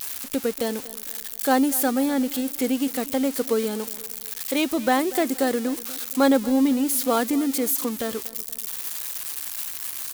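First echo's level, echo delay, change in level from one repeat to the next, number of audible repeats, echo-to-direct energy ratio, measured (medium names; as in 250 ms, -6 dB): -19.0 dB, 238 ms, -7.5 dB, 3, -18.0 dB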